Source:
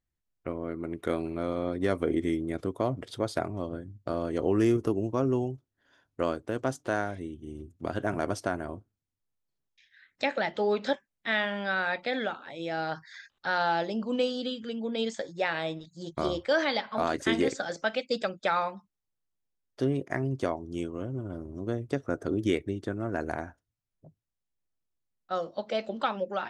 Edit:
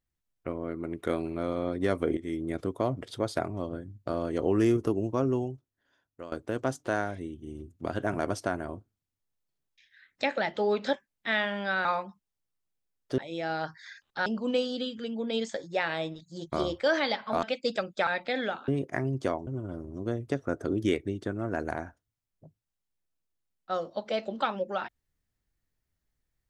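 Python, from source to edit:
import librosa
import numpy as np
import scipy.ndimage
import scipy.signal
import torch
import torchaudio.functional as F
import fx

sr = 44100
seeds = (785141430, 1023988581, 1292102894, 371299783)

y = fx.edit(x, sr, fx.fade_in_from(start_s=2.17, length_s=0.3, floor_db=-15.0),
    fx.fade_out_to(start_s=5.21, length_s=1.11, floor_db=-17.0),
    fx.swap(start_s=11.85, length_s=0.61, other_s=18.53, other_length_s=1.33),
    fx.cut(start_s=13.54, length_s=0.37),
    fx.cut(start_s=17.08, length_s=0.81),
    fx.cut(start_s=20.65, length_s=0.43), tone=tone)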